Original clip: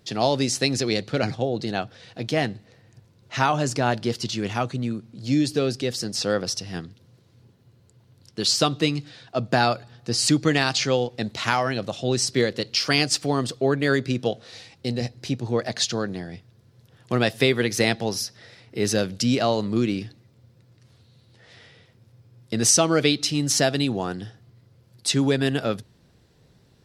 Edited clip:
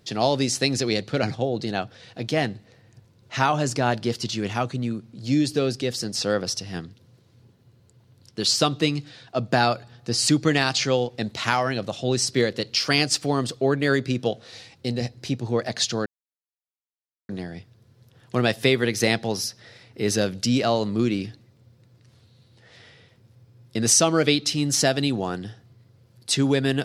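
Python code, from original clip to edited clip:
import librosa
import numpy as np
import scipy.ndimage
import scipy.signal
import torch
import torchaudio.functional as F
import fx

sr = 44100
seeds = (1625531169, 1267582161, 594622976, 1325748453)

y = fx.edit(x, sr, fx.insert_silence(at_s=16.06, length_s=1.23), tone=tone)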